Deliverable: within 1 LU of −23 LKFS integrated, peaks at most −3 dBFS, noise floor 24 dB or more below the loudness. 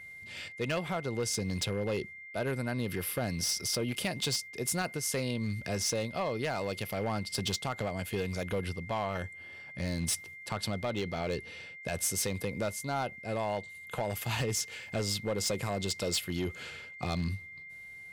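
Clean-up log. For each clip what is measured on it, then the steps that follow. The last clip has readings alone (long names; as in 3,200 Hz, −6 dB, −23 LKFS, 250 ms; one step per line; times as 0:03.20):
share of clipped samples 1.0%; peaks flattened at −25.5 dBFS; interfering tone 2,100 Hz; level of the tone −45 dBFS; integrated loudness −33.5 LKFS; sample peak −25.5 dBFS; target loudness −23.0 LKFS
→ clipped peaks rebuilt −25.5 dBFS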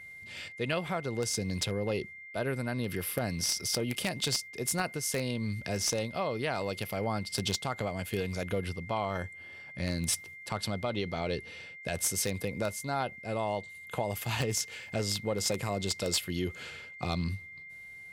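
share of clipped samples 0.0%; interfering tone 2,100 Hz; level of the tone −45 dBFS
→ notch filter 2,100 Hz, Q 30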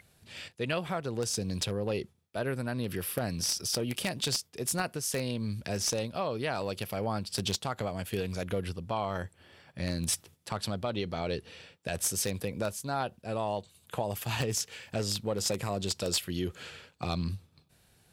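interfering tone none found; integrated loudness −33.0 LKFS; sample peak −16.0 dBFS; target loudness −23.0 LKFS
→ level +10 dB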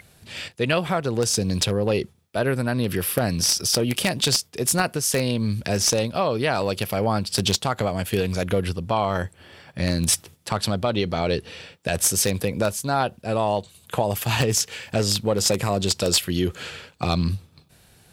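integrated loudness −23.0 LKFS; sample peak −6.0 dBFS; background noise floor −56 dBFS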